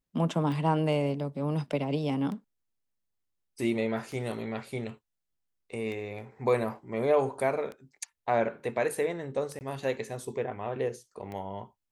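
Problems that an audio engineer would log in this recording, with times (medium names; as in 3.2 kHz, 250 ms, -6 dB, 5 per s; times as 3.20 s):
tick 33 1/3 rpm
9.59–9.61 s: dropout 19 ms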